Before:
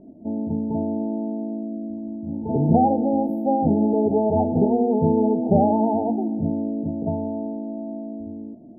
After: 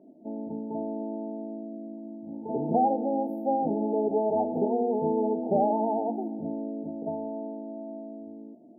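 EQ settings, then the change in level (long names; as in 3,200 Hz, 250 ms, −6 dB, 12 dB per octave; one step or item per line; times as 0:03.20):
high-pass filter 310 Hz 12 dB per octave
−4.0 dB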